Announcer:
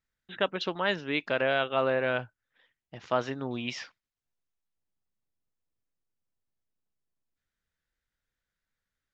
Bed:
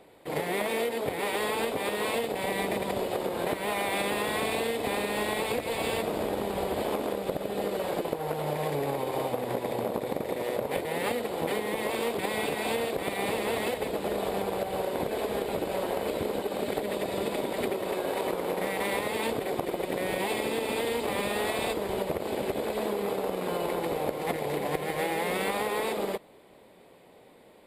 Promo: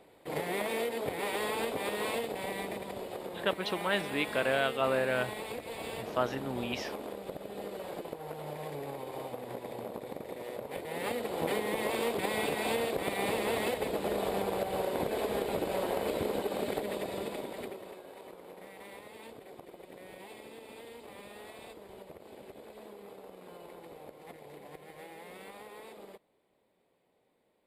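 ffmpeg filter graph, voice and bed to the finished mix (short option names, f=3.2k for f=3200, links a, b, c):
-filter_complex "[0:a]adelay=3050,volume=-2.5dB[a];[1:a]volume=4dB,afade=t=out:st=2.06:d=0.81:silence=0.501187,afade=t=in:st=10.71:d=0.75:silence=0.398107,afade=t=out:st=16.47:d=1.55:silence=0.141254[b];[a][b]amix=inputs=2:normalize=0"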